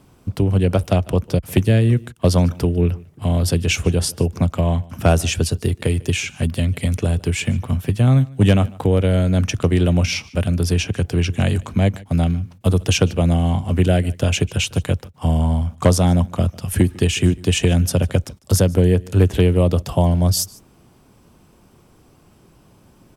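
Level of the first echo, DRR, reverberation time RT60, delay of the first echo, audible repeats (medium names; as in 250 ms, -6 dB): -23.0 dB, no reverb, no reverb, 149 ms, 1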